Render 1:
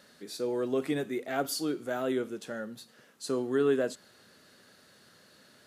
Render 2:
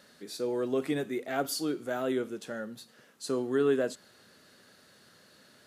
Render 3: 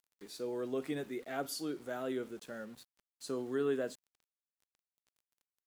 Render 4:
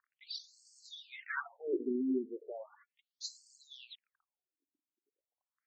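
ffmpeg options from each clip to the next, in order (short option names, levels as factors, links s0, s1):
-af anull
-af "aeval=exprs='val(0)*gte(abs(val(0)),0.00376)':c=same,volume=0.447"
-af "aphaser=in_gain=1:out_gain=1:delay=3.5:decay=0.63:speed=0.53:type=sinusoidal,afftfilt=real='re*between(b*sr/1024,270*pow(6100/270,0.5+0.5*sin(2*PI*0.36*pts/sr))/1.41,270*pow(6100/270,0.5+0.5*sin(2*PI*0.36*pts/sr))*1.41)':imag='im*between(b*sr/1024,270*pow(6100/270,0.5+0.5*sin(2*PI*0.36*pts/sr))/1.41,270*pow(6100/270,0.5+0.5*sin(2*PI*0.36*pts/sr))*1.41)':win_size=1024:overlap=0.75,volume=2"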